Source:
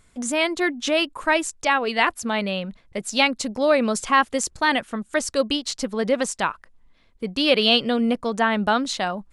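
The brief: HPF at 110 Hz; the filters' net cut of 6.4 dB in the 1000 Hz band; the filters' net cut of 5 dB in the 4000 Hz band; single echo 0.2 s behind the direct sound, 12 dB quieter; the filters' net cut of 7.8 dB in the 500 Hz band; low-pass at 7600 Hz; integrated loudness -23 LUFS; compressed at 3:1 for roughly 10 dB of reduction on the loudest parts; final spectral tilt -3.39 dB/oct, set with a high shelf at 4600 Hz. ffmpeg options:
-af "highpass=110,lowpass=7.6k,equalizer=f=500:t=o:g=-8,equalizer=f=1k:t=o:g=-5,equalizer=f=4k:t=o:g=-3.5,highshelf=f=4.6k:g=-6,acompressor=threshold=-32dB:ratio=3,aecho=1:1:200:0.251,volume=11dB"

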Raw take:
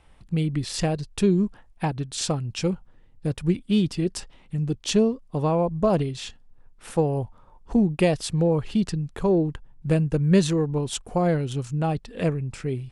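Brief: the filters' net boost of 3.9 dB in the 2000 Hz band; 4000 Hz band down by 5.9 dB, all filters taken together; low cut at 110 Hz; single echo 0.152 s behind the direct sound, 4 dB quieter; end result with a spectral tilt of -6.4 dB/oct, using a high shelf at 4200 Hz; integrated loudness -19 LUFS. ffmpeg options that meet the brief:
-af "highpass=110,equalizer=f=2k:t=o:g=8.5,equalizer=f=4k:t=o:g=-6.5,highshelf=f=4.2k:g=-7.5,aecho=1:1:152:0.631,volume=5dB"

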